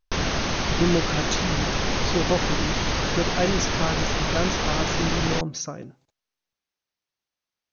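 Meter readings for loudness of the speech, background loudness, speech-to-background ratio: −28.5 LKFS, −25.0 LKFS, −3.5 dB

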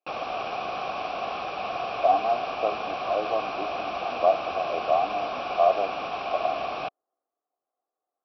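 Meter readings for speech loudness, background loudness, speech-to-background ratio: −27.0 LKFS, −31.5 LKFS, 4.5 dB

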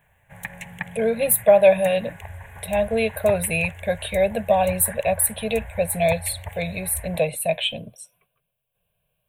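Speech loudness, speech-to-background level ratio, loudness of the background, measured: −21.5 LKFS, 16.0 dB, −37.5 LKFS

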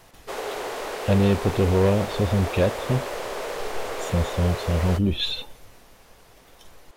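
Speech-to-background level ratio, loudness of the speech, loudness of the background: 8.0 dB, −23.5 LKFS, −31.5 LKFS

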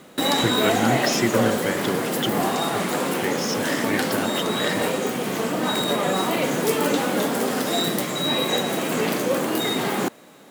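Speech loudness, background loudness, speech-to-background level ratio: −27.0 LKFS, −23.0 LKFS, −4.0 dB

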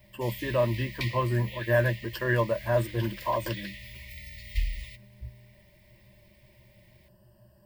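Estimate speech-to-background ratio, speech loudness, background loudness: 12.0 dB, −28.5 LKFS, −40.5 LKFS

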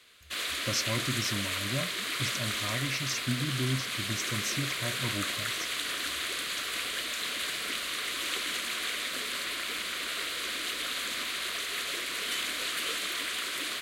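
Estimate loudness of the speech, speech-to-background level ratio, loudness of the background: −35.5 LKFS, −4.0 dB, −31.5 LKFS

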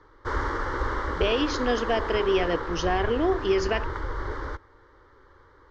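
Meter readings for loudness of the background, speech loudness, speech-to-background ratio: −31.5 LKFS, −26.0 LKFS, 5.5 dB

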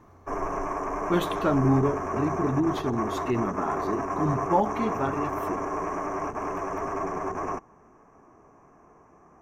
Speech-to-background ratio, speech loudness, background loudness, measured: 3.0 dB, −28.0 LKFS, −31.0 LKFS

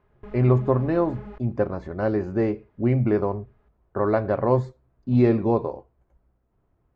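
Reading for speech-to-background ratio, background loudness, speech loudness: 19.0 dB, −42.5 LKFS, −23.5 LKFS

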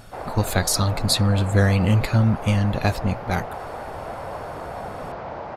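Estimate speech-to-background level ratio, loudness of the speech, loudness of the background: 12.0 dB, −21.5 LKFS, −33.5 LKFS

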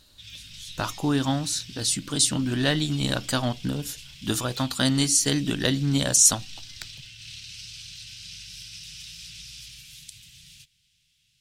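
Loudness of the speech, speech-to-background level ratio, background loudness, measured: −23.5 LKFS, 17.5 dB, −41.0 LKFS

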